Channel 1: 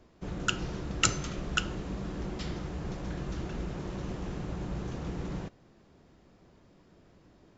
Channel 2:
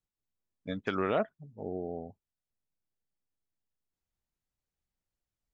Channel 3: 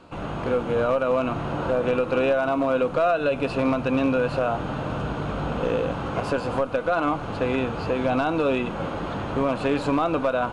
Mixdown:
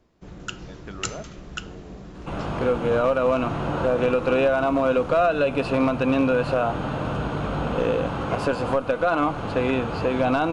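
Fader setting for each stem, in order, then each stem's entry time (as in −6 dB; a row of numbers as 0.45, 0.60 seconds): −4.0, −8.5, +1.5 decibels; 0.00, 0.00, 2.15 seconds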